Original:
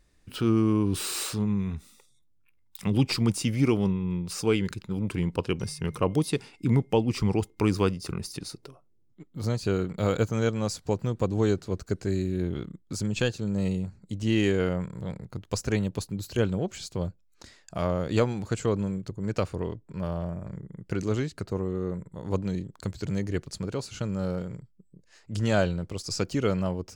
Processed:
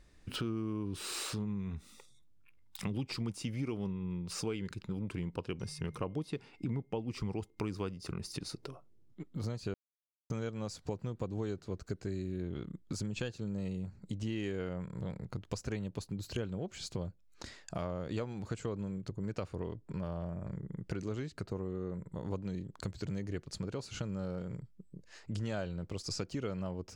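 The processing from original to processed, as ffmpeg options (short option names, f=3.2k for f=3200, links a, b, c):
-filter_complex "[0:a]asettb=1/sr,asplit=3[a][b][c];[a]atrim=end=6.114[d];[b]atrim=start=6.11:end=7.01,asetpts=PTS-STARTPTS,afade=t=in:d=0.004:c=qsin,afade=t=out:st=0.896:d=0.004:c=qsin,aemphasis=mode=reproduction:type=cd[e];[c]atrim=start=7.006[f];[d][e]acrossfade=d=0.004:c1=hsin:c2=qsin[g];[g][f]acrossfade=d=0.004:c1=qsin:c2=hsin,asplit=3[h][i][j];[h]atrim=end=9.74,asetpts=PTS-STARTPTS,afade=t=out:st=9.736:d=0.004:c=hsin[k];[i]atrim=start=9.74:end=10.3,asetpts=PTS-STARTPTS,volume=0[l];[j]atrim=start=10.3,asetpts=PTS-STARTPTS,afade=t=in:d=0.004:c=hsin[m];[k][l][m]concat=n=3:v=0:a=1,highshelf=f=9.5k:g=-10,acompressor=threshold=-40dB:ratio=4,volume=3dB"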